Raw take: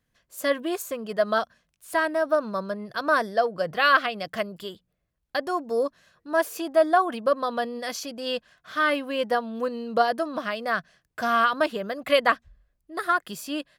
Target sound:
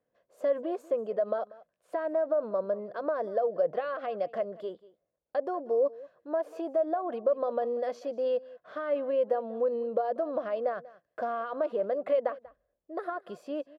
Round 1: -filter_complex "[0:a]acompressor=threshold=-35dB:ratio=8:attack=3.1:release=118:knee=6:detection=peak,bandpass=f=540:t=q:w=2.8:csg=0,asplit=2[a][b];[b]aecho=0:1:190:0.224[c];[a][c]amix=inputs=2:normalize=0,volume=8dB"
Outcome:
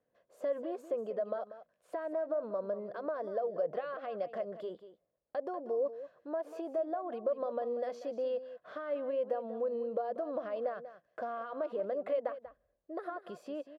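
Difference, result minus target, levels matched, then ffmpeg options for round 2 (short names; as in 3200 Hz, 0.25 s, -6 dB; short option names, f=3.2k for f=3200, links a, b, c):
compressor: peak gain reduction +6.5 dB; echo-to-direct +7 dB
-filter_complex "[0:a]acompressor=threshold=-27.5dB:ratio=8:attack=3.1:release=118:knee=6:detection=peak,bandpass=f=540:t=q:w=2.8:csg=0,asplit=2[a][b];[b]aecho=0:1:190:0.1[c];[a][c]amix=inputs=2:normalize=0,volume=8dB"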